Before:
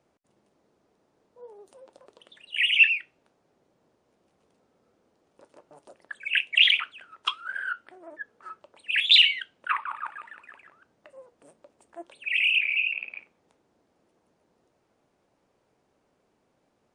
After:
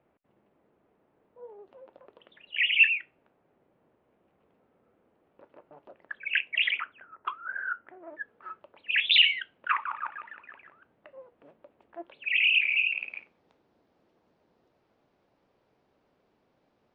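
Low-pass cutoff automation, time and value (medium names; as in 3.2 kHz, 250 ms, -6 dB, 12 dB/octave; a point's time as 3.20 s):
low-pass 24 dB/octave
6.16 s 2.8 kHz
7.16 s 1.7 kHz
7.72 s 1.7 kHz
8.14 s 3.1 kHz
12.09 s 3.1 kHz
12.70 s 4.9 kHz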